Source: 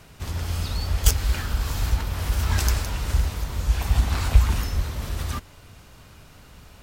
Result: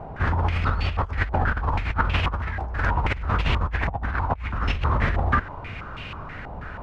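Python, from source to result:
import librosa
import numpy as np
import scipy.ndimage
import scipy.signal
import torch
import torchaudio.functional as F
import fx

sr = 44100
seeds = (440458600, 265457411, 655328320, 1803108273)

y = fx.over_compress(x, sr, threshold_db=-30.0, ratio=-1.0)
y = fx.filter_held_lowpass(y, sr, hz=6.2, low_hz=790.0, high_hz=2700.0)
y = y * librosa.db_to_amplitude(4.5)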